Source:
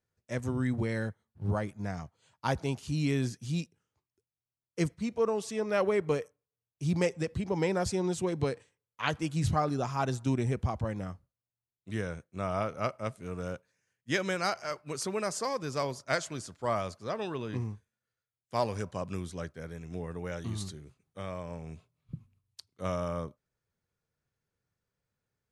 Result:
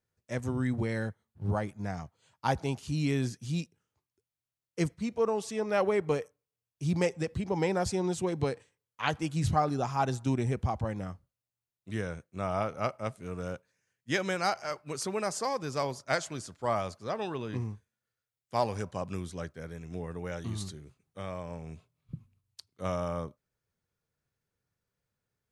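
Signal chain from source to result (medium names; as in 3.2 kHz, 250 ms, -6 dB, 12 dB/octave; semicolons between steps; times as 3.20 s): dynamic bell 800 Hz, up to +6 dB, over -51 dBFS, Q 6.1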